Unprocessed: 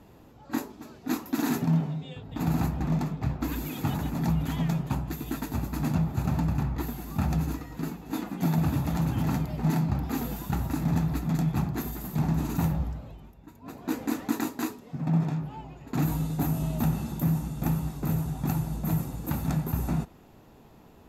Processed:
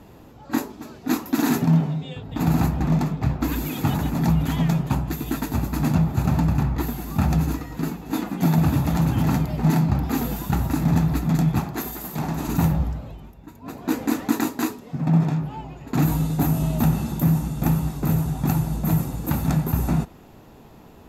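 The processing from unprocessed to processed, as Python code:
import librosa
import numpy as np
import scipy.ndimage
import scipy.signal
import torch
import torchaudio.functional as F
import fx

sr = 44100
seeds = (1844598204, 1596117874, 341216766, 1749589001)

y = fx.bass_treble(x, sr, bass_db=-10, treble_db=1, at=(11.59, 12.48))
y = F.gain(torch.from_numpy(y), 6.5).numpy()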